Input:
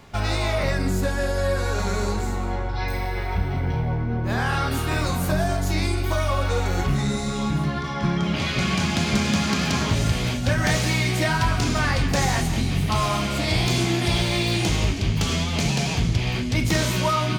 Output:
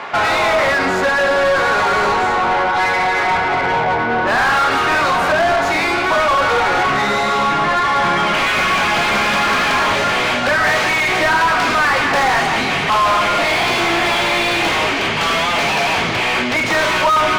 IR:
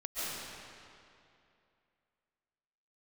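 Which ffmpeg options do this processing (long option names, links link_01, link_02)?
-filter_complex "[0:a]bandpass=frequency=1300:width_type=q:width=0.68:csg=0,asplit=2[link_01][link_02];[link_02]highpass=frequency=720:poles=1,volume=28dB,asoftclip=type=tanh:threshold=-14dB[link_03];[link_01][link_03]amix=inputs=2:normalize=0,lowpass=frequency=2000:poles=1,volume=-6dB,volume=7dB"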